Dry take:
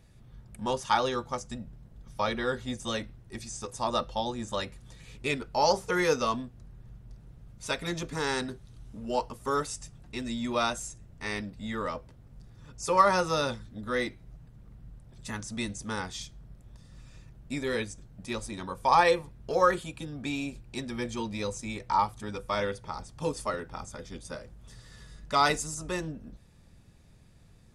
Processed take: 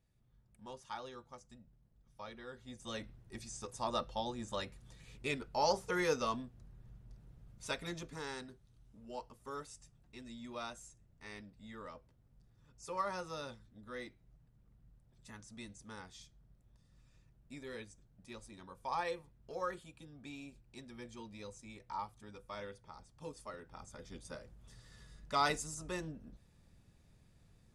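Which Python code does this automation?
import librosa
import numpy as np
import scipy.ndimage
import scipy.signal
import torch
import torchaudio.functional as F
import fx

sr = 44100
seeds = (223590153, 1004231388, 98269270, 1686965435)

y = fx.gain(x, sr, db=fx.line((2.52, -19.5), (3.09, -7.5), (7.7, -7.5), (8.49, -16.0), (23.48, -16.0), (24.1, -8.0)))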